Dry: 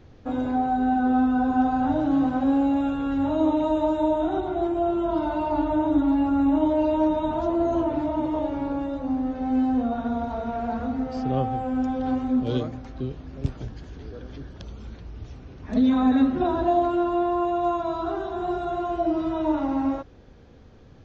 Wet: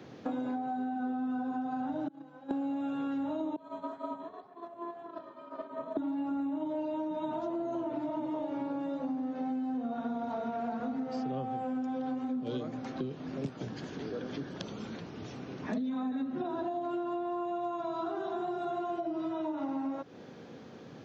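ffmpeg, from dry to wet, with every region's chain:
ffmpeg -i in.wav -filter_complex "[0:a]asettb=1/sr,asplit=3[link_01][link_02][link_03];[link_01]atrim=end=2.084[link_04];[link_02]atrim=start=2.08:end=2.51,asetpts=PTS-STARTPTS,afade=type=in:duration=0.004:curve=qsin,afade=type=out:start_time=0.426:duration=0.004:curve=qsin,agate=range=-29dB:threshold=-17dB:ratio=16:release=100:detection=peak,aecho=1:1:6:0.81,atrim=end_sample=18963[link_05];[link_03]atrim=start=2.506[link_06];[link_04][link_05]acrossfade=duration=0.004:curve1=hsin:curve2=qsin[link_07];[link_07][link_06]acrossfade=duration=0.004:curve1=qsin:curve2=hsin,asettb=1/sr,asplit=3[link_08][link_09][link_10];[link_08]atrim=end=3.564[link_11];[link_09]atrim=start=3.56:end=5.97,asetpts=PTS-STARTPTS,afade=type=in:duration=0.004:curve=qsin,afade=type=out:start_time=2.406:duration=0.004:curve=qsin,agate=range=-33dB:threshold=-14dB:ratio=3:release=100:detection=peak,flanger=delay=1.4:depth=9.2:regen=-84:speed=1.9:shape=sinusoidal,aeval=exprs='val(0)*sin(2*PI*340*n/s)':channel_layout=same[link_12];[link_10]atrim=start=5.966[link_13];[link_11][link_12]acrossfade=duration=0.004:curve1=hsin:curve2=qsin[link_14];[link_14][link_13]acrossfade=duration=0.004:curve1=qsin:curve2=hsin,acrossover=split=190[link_15][link_16];[link_16]acompressor=threshold=-25dB:ratio=6[link_17];[link_15][link_17]amix=inputs=2:normalize=0,highpass=frequency=150:width=0.5412,highpass=frequency=150:width=1.3066,acompressor=threshold=-38dB:ratio=6,volume=5dB" out.wav

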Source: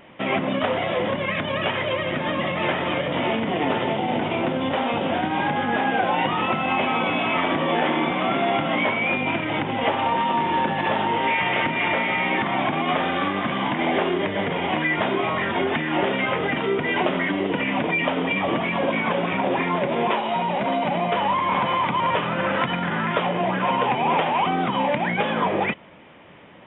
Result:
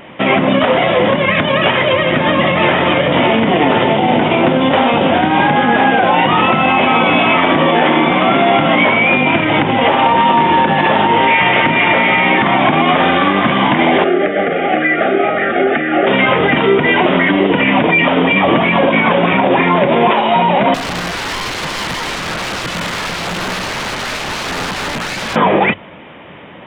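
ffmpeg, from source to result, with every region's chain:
ffmpeg -i in.wav -filter_complex "[0:a]asettb=1/sr,asplit=3[link_01][link_02][link_03];[link_01]atrim=end=14.044[link_04];[link_02]atrim=start=14.04:end=16.07,asetpts=PTS-STARTPTS,afade=type=in:duration=0.004:curve=qsin,afade=type=out:start_time=2.026:duration=0.004:curve=qsin,asuperstop=centerf=980:order=20:qfactor=3.2,acrossover=split=250 2300:gain=0.178 1 0.126[link_05][link_06][link_07];[link_05][link_06][link_07]amix=inputs=3:normalize=0[link_08];[link_03]atrim=start=16.066[link_09];[link_04][link_08]acrossfade=duration=0.004:curve1=hsin:curve2=qsin[link_10];[link_10][link_09]acrossfade=duration=0.004:curve1=qsin:curve2=hsin,asettb=1/sr,asplit=3[link_11][link_12][link_13];[link_11]atrim=end=20.744[link_14];[link_12]atrim=start=20.74:end=25.36,asetpts=PTS-STARTPTS,afade=type=in:duration=0.004:curve=qsin,afade=type=out:start_time=4.616:duration=0.004:curve=qsin,equalizer=frequency=570:width_type=o:width=1.7:gain=-12,aeval=exprs='(mod(17.8*val(0)+1,2)-1)/17.8':channel_layout=same,adynamicsmooth=sensitivity=3.5:basefreq=2200[link_15];[link_13]atrim=start=25.356[link_16];[link_14][link_15]acrossfade=duration=0.004:curve1=hsin:curve2=qsin[link_17];[link_17][link_16]acrossfade=duration=0.004:curve1=qsin:curve2=hsin,bandreject=frequency=50:width_type=h:width=6,bandreject=frequency=100:width_type=h:width=6,alimiter=level_in=13dB:limit=-1dB:release=50:level=0:latency=1,volume=-1dB" out.wav

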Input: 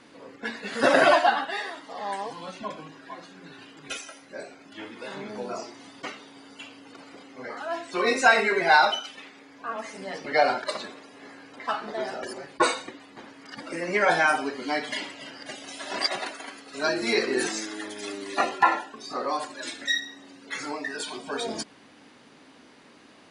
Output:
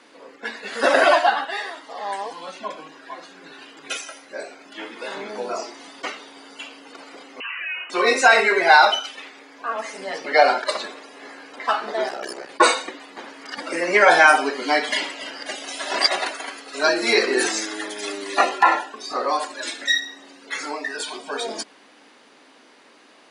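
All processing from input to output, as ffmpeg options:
ffmpeg -i in.wav -filter_complex "[0:a]asettb=1/sr,asplit=3[link_01][link_02][link_03];[link_01]atrim=end=7.404[link_04];[link_02]atrim=start=7.4:end=7.9,asetpts=PTS-STARTPTS,afade=type=in:duration=0.004:curve=qsin,afade=type=out:start_time=0.496:duration=0.004:curve=qsin,acompressor=threshold=-32dB:ratio=4:attack=3.2:release=140:knee=1:detection=peak,lowpass=frequency=2700:width_type=q:width=0.5098,lowpass=frequency=2700:width_type=q:width=0.6013,lowpass=frequency=2700:width_type=q:width=0.9,lowpass=frequency=2700:width_type=q:width=2.563,afreqshift=-3200[link_05];[link_03]atrim=start=7.896[link_06];[link_04][link_05]acrossfade=duration=0.004:curve1=hsin:curve2=qsin[link_07];[link_07][link_06]acrossfade=duration=0.004:curve1=qsin:curve2=hsin,asettb=1/sr,asplit=3[link_08][link_09][link_10];[link_08]atrim=end=12.084[link_11];[link_09]atrim=start=12.08:end=12.49,asetpts=PTS-STARTPTS,afade=type=in:duration=0.004:curve=qsin,afade=type=out:start_time=0.406:duration=0.004:curve=qsin,volume=28.5dB,asoftclip=hard,volume=-28.5dB,aeval=exprs='val(0)*sin(2*PI*32*n/s)':channel_layout=same[link_12];[link_10]atrim=start=12.486[link_13];[link_11][link_12]acrossfade=duration=0.004:curve1=hsin:curve2=qsin[link_14];[link_14][link_13]acrossfade=duration=0.004:curve1=qsin:curve2=hsin,highpass=350,dynaudnorm=framelen=590:gausssize=13:maxgain=11.5dB,alimiter=level_in=4dB:limit=-1dB:release=50:level=0:latency=1,volume=-1dB" out.wav

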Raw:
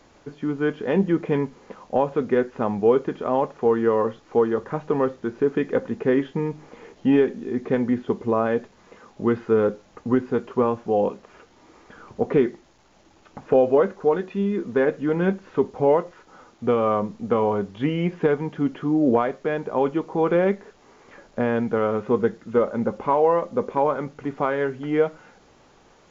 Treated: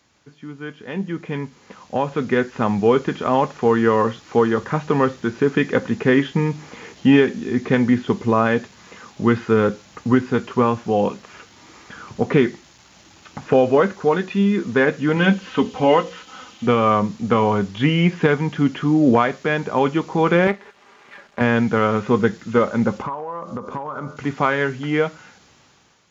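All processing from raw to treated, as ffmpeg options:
ffmpeg -i in.wav -filter_complex "[0:a]asettb=1/sr,asplit=3[link_01][link_02][link_03];[link_01]atrim=end=15.164[link_04];[link_02]atrim=start=15.16:end=16.67,asetpts=PTS-STARTPTS,afade=type=in:duration=0.004:curve=qsin,afade=type=out:start_time=1.506:duration=0.004:curve=qsin,equalizer=frequency=3000:width_type=o:width=0.47:gain=9,bandreject=frequency=60:width_type=h:width=6,bandreject=frequency=120:width_type=h:width=6,bandreject=frequency=180:width_type=h:width=6,bandreject=frequency=240:width_type=h:width=6,bandreject=frequency=300:width_type=h:width=6,bandreject=frequency=360:width_type=h:width=6,bandreject=frequency=420:width_type=h:width=6,bandreject=frequency=480:width_type=h:width=6,bandreject=frequency=540:width_type=h:width=6,aecho=1:1:3.9:0.5,atrim=end_sample=66591[link_05];[link_03]atrim=start=16.666[link_06];[link_04][link_05]acrossfade=duration=0.004:curve1=hsin:curve2=qsin[link_07];[link_07][link_06]acrossfade=duration=0.004:curve1=qsin:curve2=hsin,asettb=1/sr,asplit=3[link_08][link_09][link_10];[link_08]atrim=end=20.474[link_11];[link_09]atrim=start=20.47:end=21.41,asetpts=PTS-STARTPTS,afade=type=in:duration=0.004:curve=qsin,afade=type=out:start_time=0.936:duration=0.004:curve=qsin,aeval=exprs='if(lt(val(0),0),0.251*val(0),val(0))':channel_layout=same,bass=frequency=250:gain=-11,treble=frequency=4000:gain=-13,aecho=1:1:5:0.4,atrim=end_sample=41454[link_12];[link_10]atrim=start=21.406[link_13];[link_11][link_12]acrossfade=duration=0.004:curve1=hsin:curve2=qsin[link_14];[link_14][link_13]acrossfade=duration=0.004:curve1=qsin:curve2=hsin,asettb=1/sr,asplit=3[link_15][link_16][link_17];[link_15]atrim=end=23.024[link_18];[link_16]atrim=start=23.02:end=24.17,asetpts=PTS-STARTPTS,afade=type=in:duration=0.004:curve=qsin,afade=type=out:start_time=1.146:duration=0.004:curve=qsin,highshelf=frequency=1600:width_type=q:width=3:gain=-6.5,bandreject=frequency=86.55:width_type=h:width=4,bandreject=frequency=173.1:width_type=h:width=4,bandreject=frequency=259.65:width_type=h:width=4,bandreject=frequency=346.2:width_type=h:width=4,bandreject=frequency=432.75:width_type=h:width=4,bandreject=frequency=519.3:width_type=h:width=4,bandreject=frequency=605.85:width_type=h:width=4,bandreject=frequency=692.4:width_type=h:width=4,bandreject=frequency=778.95:width_type=h:width=4,bandreject=frequency=865.5:width_type=h:width=4,bandreject=frequency=952.05:width_type=h:width=4,bandreject=frequency=1038.6:width_type=h:width=4,bandreject=frequency=1125.15:width_type=h:width=4,bandreject=frequency=1211.7:width_type=h:width=4,bandreject=frequency=1298.25:width_type=h:width=4,bandreject=frequency=1384.8:width_type=h:width=4,bandreject=frequency=1471.35:width_type=h:width=4,bandreject=frequency=1557.9:width_type=h:width=4,bandreject=frequency=1644.45:width_type=h:width=4,bandreject=frequency=1731:width_type=h:width=4,bandreject=frequency=1817.55:width_type=h:width=4,bandreject=frequency=1904.1:width_type=h:width=4,bandreject=frequency=1990.65:width_type=h:width=4,bandreject=frequency=2077.2:width_type=h:width=4,bandreject=frequency=2163.75:width_type=h:width=4,bandreject=frequency=2250.3:width_type=h:width=4,bandreject=frequency=2336.85:width_type=h:width=4,bandreject=frequency=2423.4:width_type=h:width=4,bandreject=frequency=2509.95:width_type=h:width=4,bandreject=frequency=2596.5:width_type=h:width=4,bandreject=frequency=2683.05:width_type=h:width=4,bandreject=frequency=2769.6:width_type=h:width=4,bandreject=frequency=2856.15:width_type=h:width=4,acompressor=threshold=-29dB:ratio=12:attack=3.2:release=140:knee=1:detection=peak[link_19];[link_17]atrim=start=24.166[link_20];[link_18][link_19]acrossfade=duration=0.004:curve1=hsin:curve2=qsin[link_21];[link_21][link_20]acrossfade=duration=0.004:curve1=qsin:curve2=hsin,highpass=99,equalizer=frequency=480:width=0.45:gain=-13,dynaudnorm=framelen=780:gausssize=5:maxgain=16dB" out.wav

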